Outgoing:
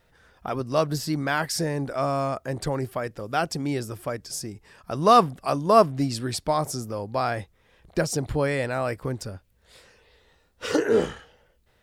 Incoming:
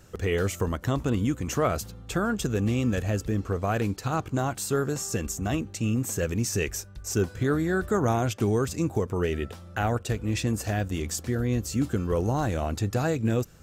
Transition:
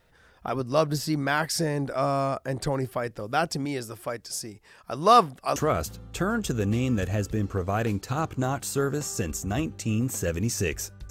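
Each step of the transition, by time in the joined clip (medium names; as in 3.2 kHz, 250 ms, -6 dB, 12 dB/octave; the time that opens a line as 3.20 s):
outgoing
3.65–5.56 s: bass shelf 330 Hz -7 dB
5.56 s: go over to incoming from 1.51 s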